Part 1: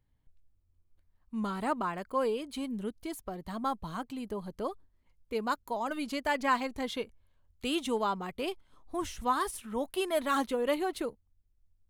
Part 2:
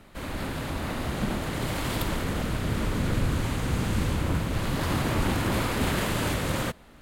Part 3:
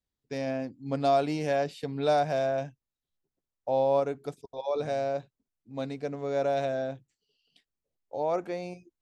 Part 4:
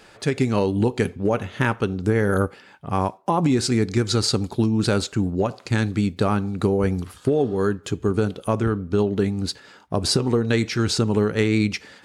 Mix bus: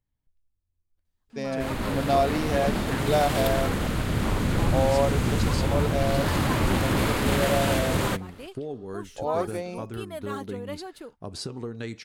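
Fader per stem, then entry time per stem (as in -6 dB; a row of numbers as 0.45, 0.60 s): -7.5, +2.0, +1.5, -14.5 dB; 0.00, 1.45, 1.05, 1.30 s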